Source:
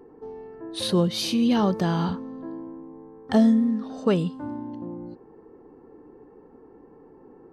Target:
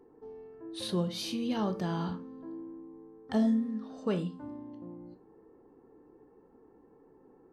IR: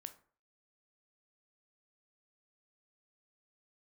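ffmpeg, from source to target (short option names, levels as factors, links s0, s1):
-filter_complex "[1:a]atrim=start_sample=2205,afade=t=out:st=0.18:d=0.01,atrim=end_sample=8379,asetrate=48510,aresample=44100[s0];[0:a][s0]afir=irnorm=-1:irlink=0,volume=0.708"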